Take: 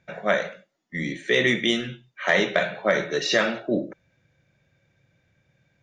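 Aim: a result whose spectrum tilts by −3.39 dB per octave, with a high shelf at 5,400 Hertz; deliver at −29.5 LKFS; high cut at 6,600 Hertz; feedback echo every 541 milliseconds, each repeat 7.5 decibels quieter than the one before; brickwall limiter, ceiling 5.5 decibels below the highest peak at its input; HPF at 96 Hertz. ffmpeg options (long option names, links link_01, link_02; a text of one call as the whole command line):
ffmpeg -i in.wav -af "highpass=96,lowpass=6600,highshelf=frequency=5400:gain=8.5,alimiter=limit=-12dB:level=0:latency=1,aecho=1:1:541|1082|1623|2164|2705:0.422|0.177|0.0744|0.0312|0.0131,volume=-4dB" out.wav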